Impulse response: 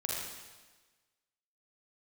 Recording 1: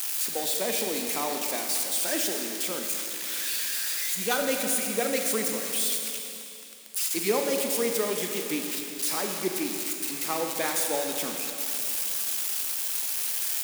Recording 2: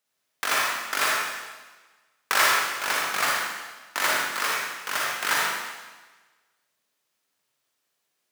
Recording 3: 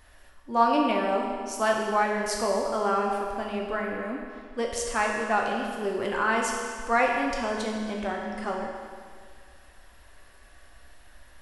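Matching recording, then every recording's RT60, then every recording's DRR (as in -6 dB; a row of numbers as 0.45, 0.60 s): 2; 2.8, 1.3, 2.0 s; 2.5, -4.0, -1.0 dB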